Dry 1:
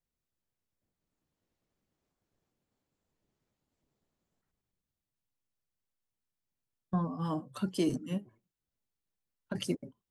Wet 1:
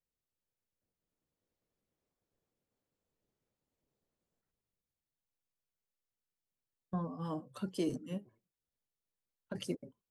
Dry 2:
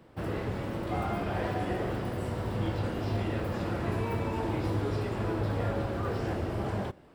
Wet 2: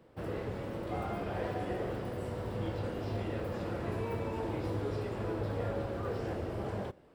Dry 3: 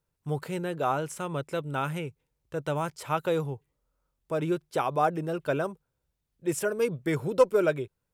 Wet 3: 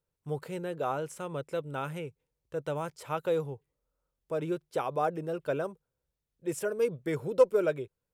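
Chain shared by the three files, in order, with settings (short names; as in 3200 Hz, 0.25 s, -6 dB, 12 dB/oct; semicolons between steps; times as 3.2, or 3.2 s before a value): bell 490 Hz +5.5 dB 0.58 oct; gain -6 dB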